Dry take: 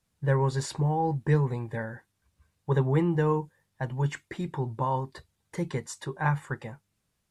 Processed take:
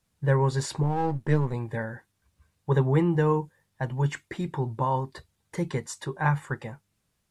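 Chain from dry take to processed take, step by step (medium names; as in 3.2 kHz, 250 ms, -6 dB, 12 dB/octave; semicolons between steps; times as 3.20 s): 0.83–1.54 s: partial rectifier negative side -7 dB; trim +2 dB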